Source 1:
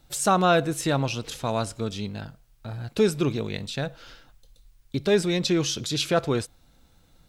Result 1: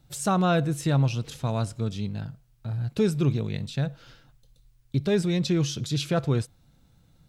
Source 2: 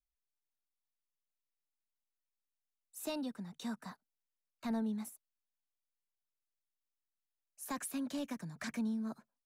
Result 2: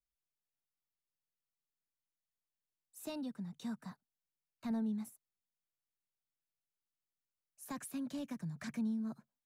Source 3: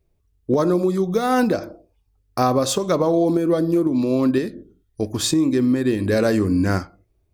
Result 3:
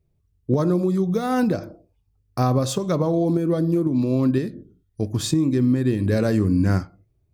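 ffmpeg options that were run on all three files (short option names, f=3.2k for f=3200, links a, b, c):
-af "equalizer=f=130:w=1:g=12,volume=-5.5dB"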